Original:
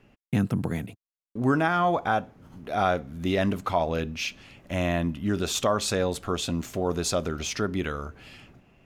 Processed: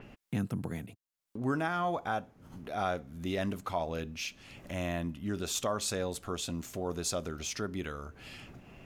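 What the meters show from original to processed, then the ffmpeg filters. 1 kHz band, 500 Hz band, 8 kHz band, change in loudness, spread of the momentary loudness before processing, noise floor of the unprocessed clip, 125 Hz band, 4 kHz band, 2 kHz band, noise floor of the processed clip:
-8.5 dB, -8.5 dB, -4.0 dB, -8.0 dB, 10 LU, under -85 dBFS, -8.5 dB, -7.0 dB, -8.5 dB, -85 dBFS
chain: -af "acompressor=mode=upward:threshold=0.0355:ratio=2.5,adynamicequalizer=threshold=0.00631:dfrequency=5100:dqfactor=0.7:tfrequency=5100:tqfactor=0.7:attack=5:release=100:ratio=0.375:range=3:mode=boostabove:tftype=highshelf,volume=0.376"

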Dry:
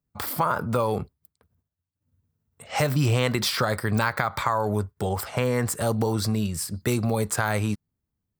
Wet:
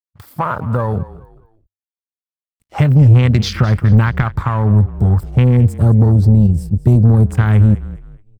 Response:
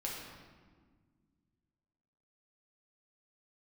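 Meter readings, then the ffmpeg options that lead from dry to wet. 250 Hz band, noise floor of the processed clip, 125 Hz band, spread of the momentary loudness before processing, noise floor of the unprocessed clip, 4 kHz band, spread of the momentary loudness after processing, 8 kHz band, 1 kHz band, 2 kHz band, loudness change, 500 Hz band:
+11.5 dB, under -85 dBFS, +17.5 dB, 6 LU, -84 dBFS, +0.5 dB, 11 LU, no reading, +2.5 dB, +2.0 dB, +12.5 dB, +2.5 dB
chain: -filter_complex "[0:a]aeval=exprs='sgn(val(0))*max(abs(val(0))-0.0106,0)':c=same,afwtdn=0.0282,asubboost=boost=8.5:cutoff=200,acontrast=83,asplit=4[s0][s1][s2][s3];[s1]adelay=210,afreqshift=-33,volume=0.141[s4];[s2]adelay=420,afreqshift=-66,volume=0.0468[s5];[s3]adelay=630,afreqshift=-99,volume=0.0153[s6];[s0][s4][s5][s6]amix=inputs=4:normalize=0,volume=0.891"

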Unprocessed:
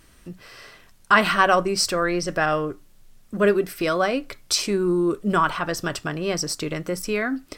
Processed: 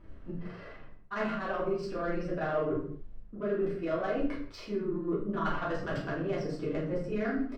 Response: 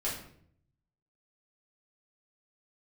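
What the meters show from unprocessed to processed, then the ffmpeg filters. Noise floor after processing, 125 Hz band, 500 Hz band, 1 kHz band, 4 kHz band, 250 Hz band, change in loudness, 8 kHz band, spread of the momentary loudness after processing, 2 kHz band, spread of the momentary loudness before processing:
-48 dBFS, -7.0 dB, -8.5 dB, -14.5 dB, -22.5 dB, -8.0 dB, -11.5 dB, under -30 dB, 12 LU, -15.5 dB, 10 LU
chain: -filter_complex "[0:a]bandreject=f=2400:w=26,areverse,acompressor=threshold=0.0316:ratio=16,areverse,asplit=2[s0][s1];[s1]adelay=28,volume=0.282[s2];[s0][s2]amix=inputs=2:normalize=0,adynamicsmooth=sensitivity=1.5:basefreq=1400,tremolo=f=24:d=0.75[s3];[1:a]atrim=start_sample=2205,afade=t=out:st=0.35:d=0.01,atrim=end_sample=15876[s4];[s3][s4]afir=irnorm=-1:irlink=0"

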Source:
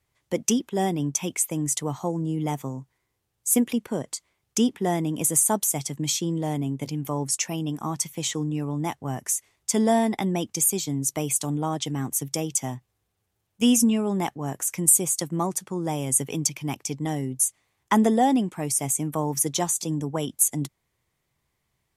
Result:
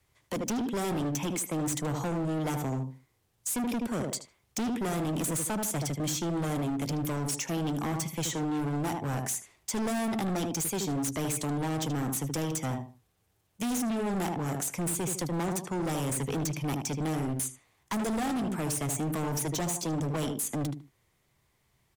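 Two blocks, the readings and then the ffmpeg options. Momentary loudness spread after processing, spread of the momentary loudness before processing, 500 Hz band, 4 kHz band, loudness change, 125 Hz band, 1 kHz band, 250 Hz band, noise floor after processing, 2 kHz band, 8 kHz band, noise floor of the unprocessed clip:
4 LU, 10 LU, -5.0 dB, -6.0 dB, -6.5 dB, -2.5 dB, -6.0 dB, -5.5 dB, -72 dBFS, -1.5 dB, -10.0 dB, -77 dBFS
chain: -filter_complex "[0:a]asplit=2[s0][s1];[s1]adelay=76,lowpass=f=1600:p=1,volume=0.422,asplit=2[s2][s3];[s3]adelay=76,lowpass=f=1600:p=1,volume=0.26,asplit=2[s4][s5];[s5]adelay=76,lowpass=f=1600:p=1,volume=0.26[s6];[s0][s2][s4][s6]amix=inputs=4:normalize=0,acrossover=split=270|1200|3900[s7][s8][s9][s10];[s7]acompressor=threshold=0.0355:ratio=4[s11];[s8]acompressor=threshold=0.0355:ratio=4[s12];[s9]acompressor=threshold=0.00501:ratio=4[s13];[s10]acompressor=threshold=0.0224:ratio=4[s14];[s11][s12][s13][s14]amix=inputs=4:normalize=0,asoftclip=type=hard:threshold=0.0237,volume=1.58"

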